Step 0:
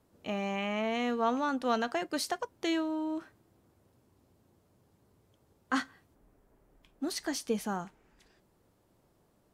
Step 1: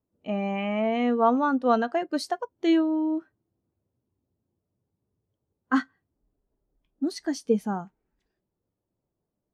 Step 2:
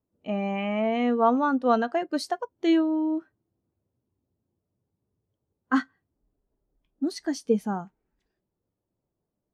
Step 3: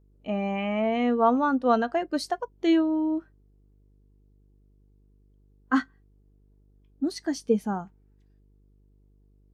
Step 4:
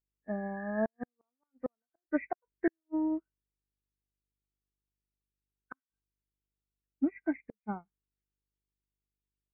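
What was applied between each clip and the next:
spectral contrast expander 1.5:1; trim +6.5 dB
no audible change
mains buzz 50 Hz, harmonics 9, -60 dBFS -7 dB/octave
knee-point frequency compression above 1.5 kHz 4:1; inverted gate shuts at -16 dBFS, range -37 dB; upward expansion 2.5:1, over -44 dBFS

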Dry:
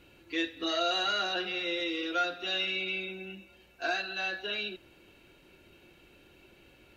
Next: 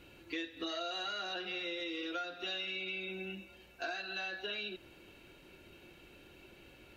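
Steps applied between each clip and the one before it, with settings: compression 6:1, threshold -38 dBFS, peak gain reduction 13 dB; trim +1 dB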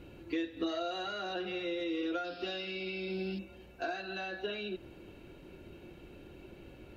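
painted sound noise, 2.24–3.39 s, 2.3–5.4 kHz -52 dBFS; tilt shelf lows +6.5 dB; trim +2.5 dB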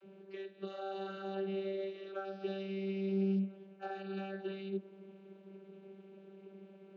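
vocoder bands 32, saw 194 Hz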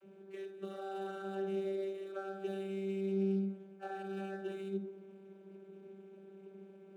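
median filter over 9 samples; reverberation RT60 0.50 s, pre-delay 42 ms, DRR 6.5 dB; trim -1.5 dB

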